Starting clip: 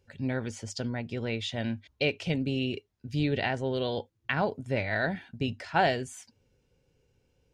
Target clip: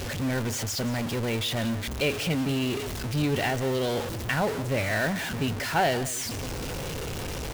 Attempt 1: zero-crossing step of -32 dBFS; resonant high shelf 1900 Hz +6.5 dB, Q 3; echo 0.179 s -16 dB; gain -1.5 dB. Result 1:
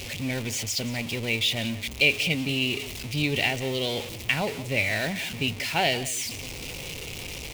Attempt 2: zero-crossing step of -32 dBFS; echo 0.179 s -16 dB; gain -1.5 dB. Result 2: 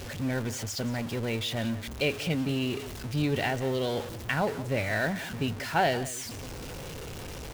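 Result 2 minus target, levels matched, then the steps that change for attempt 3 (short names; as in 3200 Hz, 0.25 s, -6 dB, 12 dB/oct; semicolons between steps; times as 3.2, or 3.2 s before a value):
zero-crossing step: distortion -5 dB
change: zero-crossing step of -25.5 dBFS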